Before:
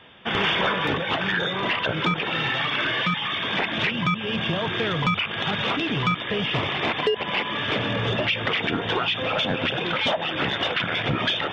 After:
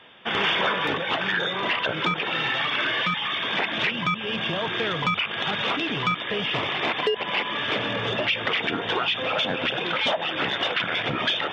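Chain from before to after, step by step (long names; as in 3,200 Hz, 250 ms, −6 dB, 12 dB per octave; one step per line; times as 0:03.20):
low-shelf EQ 160 Hz −12 dB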